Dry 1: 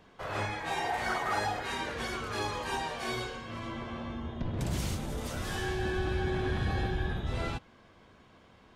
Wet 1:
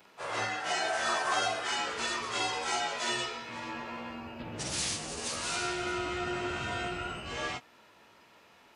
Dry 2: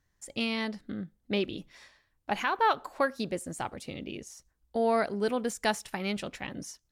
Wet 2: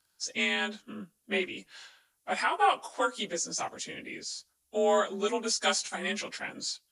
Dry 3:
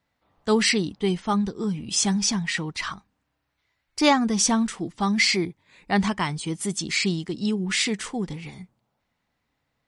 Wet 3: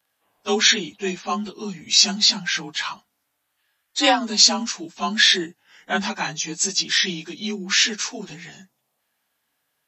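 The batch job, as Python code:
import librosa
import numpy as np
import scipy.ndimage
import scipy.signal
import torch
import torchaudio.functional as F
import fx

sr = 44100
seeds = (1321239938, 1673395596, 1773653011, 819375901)

y = fx.partial_stretch(x, sr, pct=91)
y = fx.riaa(y, sr, side='recording')
y = F.gain(torch.from_numpy(y), 3.5).numpy()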